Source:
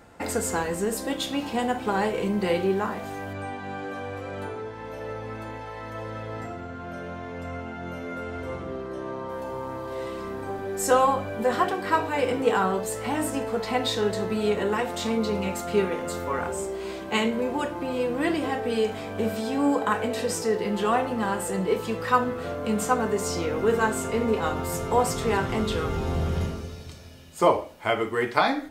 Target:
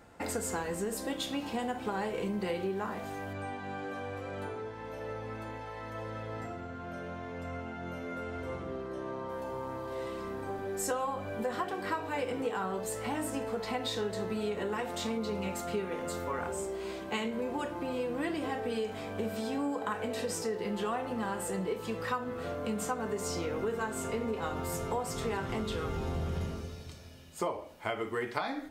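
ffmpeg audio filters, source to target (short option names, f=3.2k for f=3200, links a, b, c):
-af "acompressor=threshold=-25dB:ratio=6,volume=-5dB"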